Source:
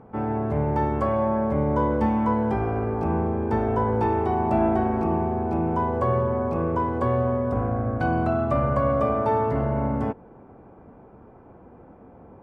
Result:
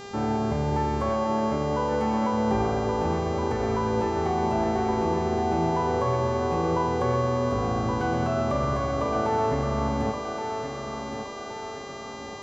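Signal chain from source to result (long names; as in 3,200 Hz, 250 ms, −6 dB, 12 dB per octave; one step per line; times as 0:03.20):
0:01.10–0:02.33: low-shelf EQ 110 Hz −11.5 dB
brickwall limiter −18 dBFS, peak gain reduction 8 dB
hum with harmonics 400 Hz, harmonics 19, −41 dBFS −5 dB per octave
feedback echo with a high-pass in the loop 1,121 ms, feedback 51%, high-pass 190 Hz, level −6.5 dB
convolution reverb RT60 1.4 s, pre-delay 37 ms, DRR 12 dB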